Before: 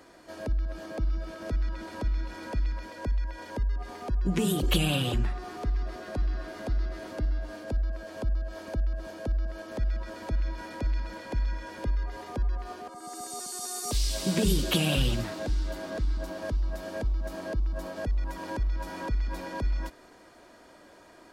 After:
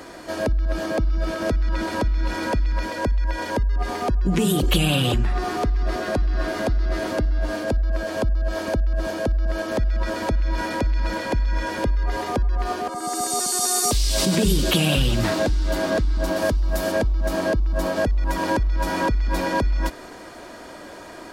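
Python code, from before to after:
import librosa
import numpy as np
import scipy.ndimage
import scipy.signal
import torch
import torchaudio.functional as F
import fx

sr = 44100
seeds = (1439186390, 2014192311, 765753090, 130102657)

p1 = fx.high_shelf(x, sr, hz=8800.0, db=10.5, at=(16.36, 16.92))
p2 = fx.over_compress(p1, sr, threshold_db=-34.0, ratio=-1.0)
p3 = p1 + (p2 * librosa.db_to_amplitude(2.0))
y = p3 * librosa.db_to_amplitude(4.0)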